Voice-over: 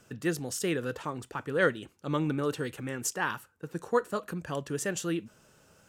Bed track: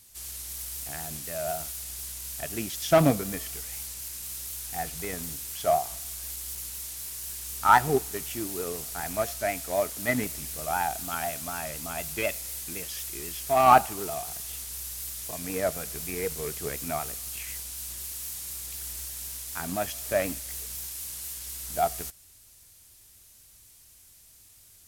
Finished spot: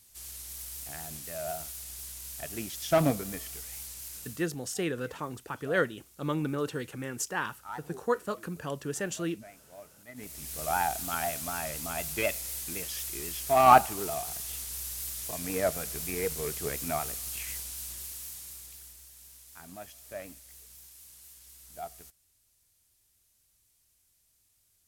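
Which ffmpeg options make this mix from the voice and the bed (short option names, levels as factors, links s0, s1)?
-filter_complex "[0:a]adelay=4150,volume=0.841[s0];[1:a]volume=7.5,afade=t=out:st=4.16:d=0.33:silence=0.125893,afade=t=in:st=10.14:d=0.52:silence=0.0794328,afade=t=out:st=17.5:d=1.48:silence=0.188365[s1];[s0][s1]amix=inputs=2:normalize=0"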